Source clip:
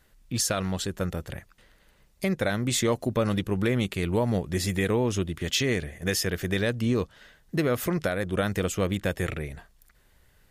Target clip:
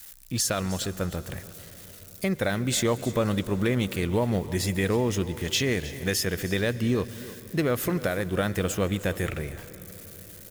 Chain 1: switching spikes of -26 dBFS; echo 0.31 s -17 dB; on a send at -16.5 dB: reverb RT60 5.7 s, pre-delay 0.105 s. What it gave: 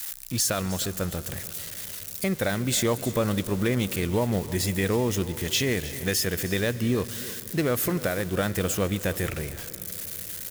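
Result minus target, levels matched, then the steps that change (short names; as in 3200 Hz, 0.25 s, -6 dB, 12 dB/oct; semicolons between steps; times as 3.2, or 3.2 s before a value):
switching spikes: distortion +11 dB
change: switching spikes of -37 dBFS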